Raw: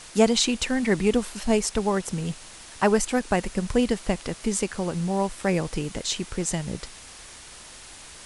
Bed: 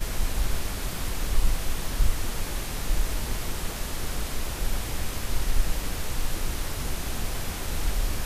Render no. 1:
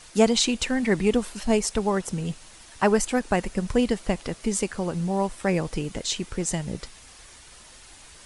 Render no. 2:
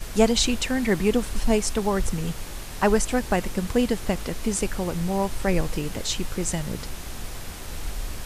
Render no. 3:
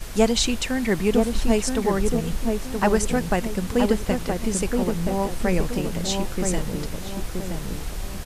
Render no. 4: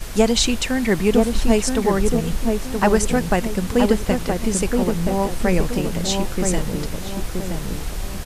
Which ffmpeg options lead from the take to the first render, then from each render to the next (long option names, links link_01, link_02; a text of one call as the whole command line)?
ffmpeg -i in.wav -af "afftdn=noise_reduction=6:noise_floor=-45" out.wav
ffmpeg -i in.wav -i bed.wav -filter_complex "[1:a]volume=-5dB[link_01];[0:a][link_01]amix=inputs=2:normalize=0" out.wav
ffmpeg -i in.wav -filter_complex "[0:a]asplit=2[link_01][link_02];[link_02]adelay=974,lowpass=frequency=950:poles=1,volume=-3dB,asplit=2[link_03][link_04];[link_04]adelay=974,lowpass=frequency=950:poles=1,volume=0.42,asplit=2[link_05][link_06];[link_06]adelay=974,lowpass=frequency=950:poles=1,volume=0.42,asplit=2[link_07][link_08];[link_08]adelay=974,lowpass=frequency=950:poles=1,volume=0.42,asplit=2[link_09][link_10];[link_10]adelay=974,lowpass=frequency=950:poles=1,volume=0.42[link_11];[link_01][link_03][link_05][link_07][link_09][link_11]amix=inputs=6:normalize=0" out.wav
ffmpeg -i in.wav -af "volume=3.5dB,alimiter=limit=-3dB:level=0:latency=1" out.wav